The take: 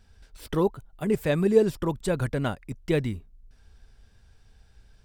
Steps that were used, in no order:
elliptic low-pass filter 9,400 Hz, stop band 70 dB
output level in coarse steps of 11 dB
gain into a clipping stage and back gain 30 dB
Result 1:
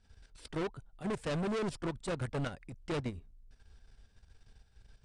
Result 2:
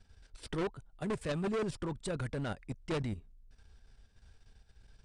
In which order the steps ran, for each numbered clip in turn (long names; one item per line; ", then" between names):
gain into a clipping stage and back, then elliptic low-pass filter, then output level in coarse steps
output level in coarse steps, then gain into a clipping stage and back, then elliptic low-pass filter